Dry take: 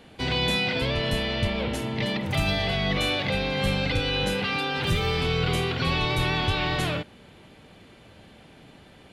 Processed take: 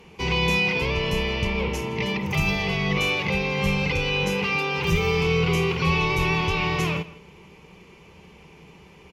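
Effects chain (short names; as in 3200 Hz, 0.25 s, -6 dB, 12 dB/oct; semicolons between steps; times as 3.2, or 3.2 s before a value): ripple EQ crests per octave 0.78, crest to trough 12 dB; outdoor echo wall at 28 m, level -18 dB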